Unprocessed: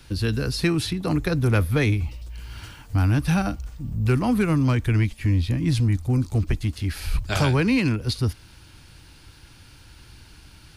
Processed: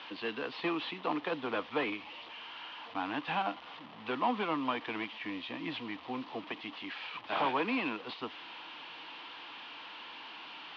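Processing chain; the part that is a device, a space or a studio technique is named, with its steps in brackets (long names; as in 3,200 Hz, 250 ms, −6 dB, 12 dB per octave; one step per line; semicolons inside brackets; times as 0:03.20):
digital answering machine (band-pass filter 330–3,300 Hz; linear delta modulator 32 kbit/s, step −39 dBFS; loudspeaker in its box 370–3,400 Hz, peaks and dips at 390 Hz −8 dB, 570 Hz −6 dB, 1,000 Hz +5 dB, 1,500 Hz −7 dB, 2,100 Hz −3 dB, 3,100 Hz +5 dB)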